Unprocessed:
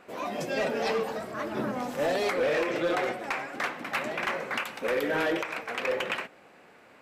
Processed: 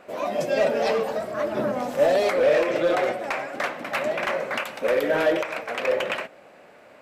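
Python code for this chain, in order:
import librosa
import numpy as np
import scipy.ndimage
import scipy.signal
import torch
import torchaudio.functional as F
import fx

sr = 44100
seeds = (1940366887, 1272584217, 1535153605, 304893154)

y = fx.peak_eq(x, sr, hz=600.0, db=9.5, octaves=0.37)
y = F.gain(torch.from_numpy(y), 2.5).numpy()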